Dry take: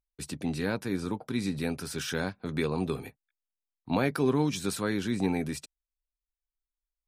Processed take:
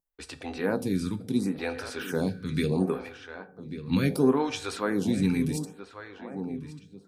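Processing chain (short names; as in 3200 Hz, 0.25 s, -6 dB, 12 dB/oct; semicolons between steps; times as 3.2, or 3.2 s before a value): darkening echo 1.141 s, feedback 39%, low-pass 2700 Hz, level -11.5 dB; on a send at -10 dB: reverb RT60 0.70 s, pre-delay 3 ms; on the sum: photocell phaser 0.71 Hz; gain +4.5 dB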